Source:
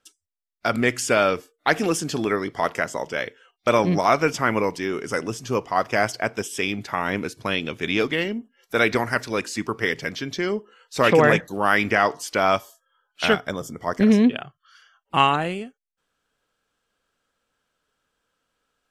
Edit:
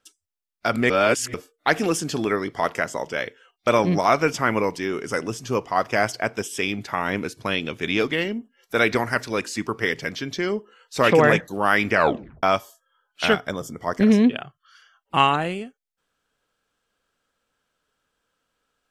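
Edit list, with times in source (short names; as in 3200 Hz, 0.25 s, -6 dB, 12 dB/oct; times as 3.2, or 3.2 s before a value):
0.9–1.34 reverse
11.94 tape stop 0.49 s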